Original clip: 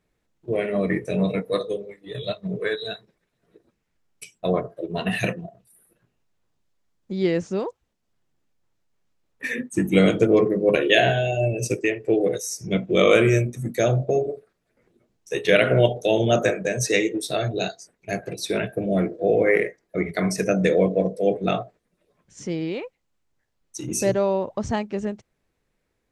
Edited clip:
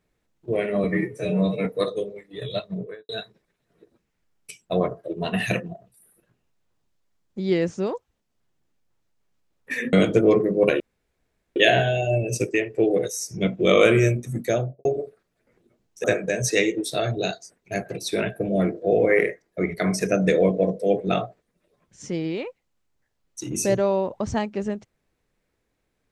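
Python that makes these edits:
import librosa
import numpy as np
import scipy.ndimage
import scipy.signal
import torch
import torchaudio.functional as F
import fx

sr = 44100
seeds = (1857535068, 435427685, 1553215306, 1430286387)

y = fx.studio_fade_out(x, sr, start_s=2.37, length_s=0.45)
y = fx.studio_fade_out(y, sr, start_s=13.71, length_s=0.44)
y = fx.edit(y, sr, fx.stretch_span(start_s=0.84, length_s=0.54, factor=1.5),
    fx.cut(start_s=9.66, length_s=0.33),
    fx.insert_room_tone(at_s=10.86, length_s=0.76),
    fx.cut(start_s=15.34, length_s=1.07), tone=tone)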